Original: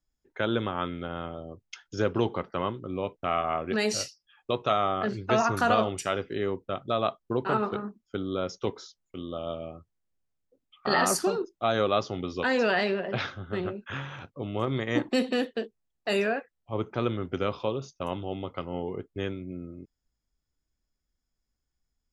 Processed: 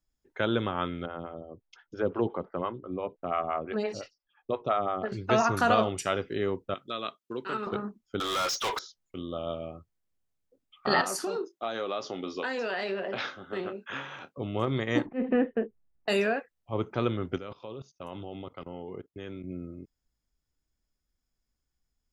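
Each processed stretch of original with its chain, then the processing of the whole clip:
0:01.06–0:05.12: high-frequency loss of the air 190 metres + phaser with staggered stages 5.8 Hz
0:06.74–0:07.67: Bessel high-pass filter 360 Hz + parametric band 730 Hz −14.5 dB 1.1 octaves
0:08.20–0:08.79: high-pass filter 890 Hz + high-shelf EQ 9,000 Hz +9 dB + mid-hump overdrive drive 34 dB, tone 6,600 Hz, clips at −22 dBFS
0:11.01–0:14.38: high-pass filter 260 Hz + downward compressor, threshold −28 dBFS + double-tracking delay 26 ms −11.5 dB
0:15.06–0:16.08: Butterworth low-pass 2,400 Hz + volume swells 150 ms + spectral tilt −2 dB per octave
0:17.36–0:19.44: high-pass filter 89 Hz 6 dB per octave + output level in coarse steps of 20 dB
whole clip: no processing

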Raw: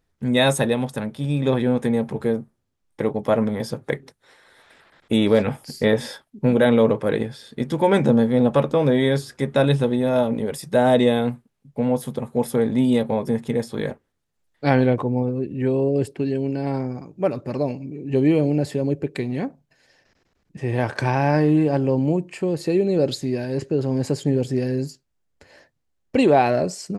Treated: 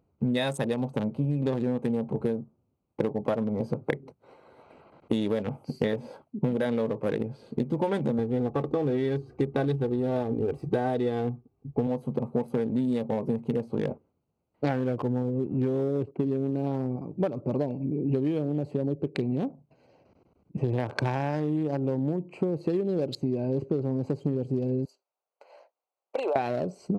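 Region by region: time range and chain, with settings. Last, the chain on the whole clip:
0:08.18–0:11.87: running median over 3 samples + spectral tilt −2 dB per octave + comb filter 2.6 ms, depth 68%
0:14.69–0:16.96: low-pass filter 2,700 Hz + leveller curve on the samples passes 1
0:24.85–0:26.36: high-pass filter 600 Hz 24 dB per octave + downward compressor 20 to 1, threshold −26 dBFS + high-shelf EQ 9,400 Hz +5.5 dB
whole clip: adaptive Wiener filter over 25 samples; high-pass filter 78 Hz; downward compressor 16 to 1, threshold −30 dBFS; level +6.5 dB

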